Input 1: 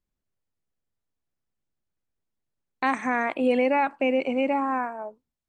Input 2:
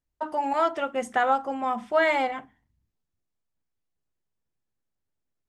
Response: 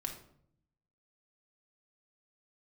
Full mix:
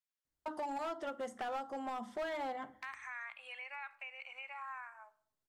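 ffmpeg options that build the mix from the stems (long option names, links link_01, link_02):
-filter_complex "[0:a]highpass=frequency=1200:width=0.5412,highpass=frequency=1200:width=1.3066,acompressor=threshold=-41dB:ratio=2,volume=-8.5dB,asplit=2[link_01][link_02];[link_02]volume=-7dB[link_03];[1:a]equalizer=frequency=2500:width=4.7:gain=-12.5,adelay=250,volume=-4.5dB,asplit=2[link_04][link_05];[link_05]volume=-16dB[link_06];[2:a]atrim=start_sample=2205[link_07];[link_03][link_06]amix=inputs=2:normalize=0[link_08];[link_08][link_07]afir=irnorm=-1:irlink=0[link_09];[link_01][link_04][link_09]amix=inputs=3:normalize=0,lowshelf=frequency=62:gain=-11.5,acrossover=split=530|2800[link_10][link_11][link_12];[link_10]acompressor=threshold=-44dB:ratio=4[link_13];[link_11]acompressor=threshold=-40dB:ratio=4[link_14];[link_12]acompressor=threshold=-59dB:ratio=4[link_15];[link_13][link_14][link_15]amix=inputs=3:normalize=0,volume=34.5dB,asoftclip=hard,volume=-34.5dB"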